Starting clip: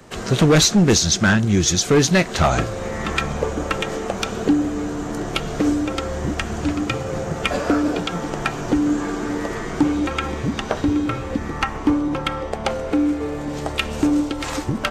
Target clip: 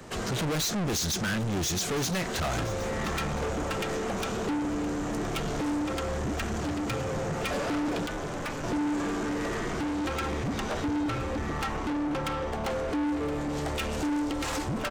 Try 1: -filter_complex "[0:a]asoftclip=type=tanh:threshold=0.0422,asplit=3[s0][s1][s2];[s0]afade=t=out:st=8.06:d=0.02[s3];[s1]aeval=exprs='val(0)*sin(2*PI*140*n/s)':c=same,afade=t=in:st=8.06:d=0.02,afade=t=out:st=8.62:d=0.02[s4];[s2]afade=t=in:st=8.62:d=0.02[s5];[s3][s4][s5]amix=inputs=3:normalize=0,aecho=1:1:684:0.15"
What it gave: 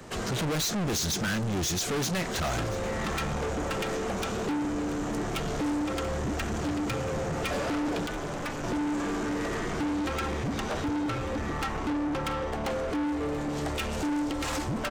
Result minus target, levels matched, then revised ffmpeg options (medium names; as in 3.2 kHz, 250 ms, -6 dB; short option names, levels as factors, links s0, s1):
echo 334 ms early
-filter_complex "[0:a]asoftclip=type=tanh:threshold=0.0422,asplit=3[s0][s1][s2];[s0]afade=t=out:st=8.06:d=0.02[s3];[s1]aeval=exprs='val(0)*sin(2*PI*140*n/s)':c=same,afade=t=in:st=8.06:d=0.02,afade=t=out:st=8.62:d=0.02[s4];[s2]afade=t=in:st=8.62:d=0.02[s5];[s3][s4][s5]amix=inputs=3:normalize=0,aecho=1:1:1018:0.15"